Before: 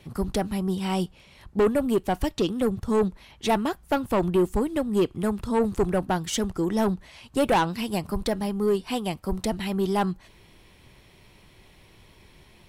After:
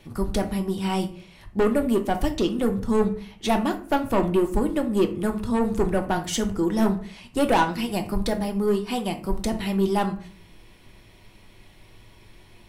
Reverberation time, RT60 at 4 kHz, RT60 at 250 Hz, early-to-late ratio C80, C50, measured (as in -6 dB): 0.45 s, 0.30 s, 0.60 s, 17.0 dB, 12.5 dB